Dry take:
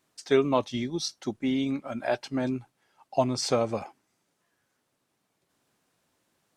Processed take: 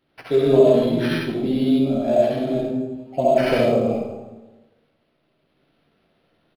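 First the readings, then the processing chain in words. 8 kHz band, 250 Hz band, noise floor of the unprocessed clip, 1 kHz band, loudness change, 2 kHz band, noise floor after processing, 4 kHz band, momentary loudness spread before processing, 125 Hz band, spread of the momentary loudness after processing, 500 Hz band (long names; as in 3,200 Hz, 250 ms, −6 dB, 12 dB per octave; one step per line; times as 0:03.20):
can't be measured, +9.0 dB, −77 dBFS, +5.5 dB, +9.0 dB, +7.0 dB, −68 dBFS, +2.0 dB, 8 LU, +9.0 dB, 12 LU, +11.0 dB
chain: flat-topped bell 1,400 Hz −15.5 dB
ambience of single reflections 13 ms −3 dB, 66 ms −3.5 dB
comb and all-pass reverb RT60 1.2 s, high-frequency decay 0.65×, pre-delay 40 ms, DRR −5.5 dB
dynamic equaliser 4,200 Hz, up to −4 dB, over −41 dBFS, Q 1.4
linearly interpolated sample-rate reduction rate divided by 6×
level +2.5 dB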